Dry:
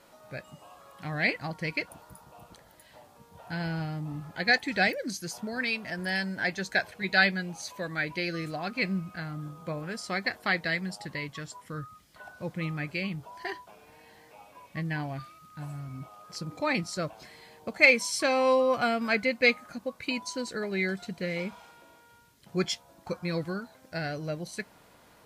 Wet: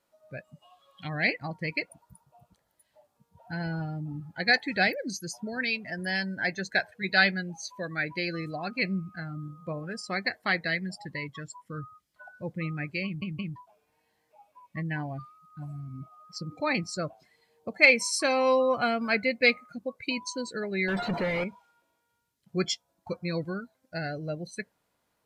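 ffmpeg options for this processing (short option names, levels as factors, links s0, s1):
-filter_complex "[0:a]asplit=3[s0][s1][s2];[s0]afade=t=out:st=0.61:d=0.02[s3];[s1]equalizer=f=3400:t=o:w=0.78:g=14.5,afade=t=in:st=0.61:d=0.02,afade=t=out:st=1.07:d=0.02[s4];[s2]afade=t=in:st=1.07:d=0.02[s5];[s3][s4][s5]amix=inputs=3:normalize=0,asettb=1/sr,asplit=3[s6][s7][s8];[s6]atrim=end=20.884[s9];[s7]atrim=start=20.88:end=21.44,asetpts=PTS-STARTPTS,afade=t=in:d=0.004:c=qsin,afade=t=out:st=0.556:d=0.004:c=qsin,asplit=2[s10][s11];[s11]highpass=f=720:p=1,volume=89.1,asoftclip=type=tanh:threshold=0.0944[s12];[s10][s12]amix=inputs=2:normalize=0,lowpass=f=1300:p=1,volume=0.501[s13];[s8]atrim=start=21.436[s14];[s9][s13]acrossfade=d=0.004:c1=hsin:c2=qsin[s15];[s15][s14]acrossfade=d=0.004:c1=qsin:c2=hsin,asplit=4[s16][s17][s18][s19];[s16]atrim=end=13.222[s20];[s17]atrim=start=13.048:end=13.222[s21];[s18]atrim=start=13.048:end=13.222[s22];[s19]atrim=start=13.558[s23];[s20][s21]acrossfade=d=0.004:c1=hsin:c2=hsin[s24];[s24][s22]acrossfade=d=0.004:c1=hsin:c2=hsin[s25];[s25][s23]acrossfade=d=0.004:c1=hsin:c2=hsin,highshelf=f=5000:g=4.5,afftdn=nr=19:nf=-38"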